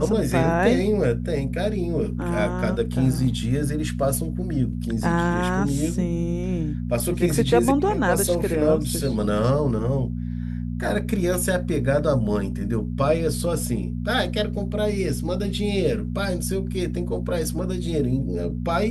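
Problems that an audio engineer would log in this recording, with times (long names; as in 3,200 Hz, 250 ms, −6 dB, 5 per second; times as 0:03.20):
mains hum 60 Hz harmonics 4 −28 dBFS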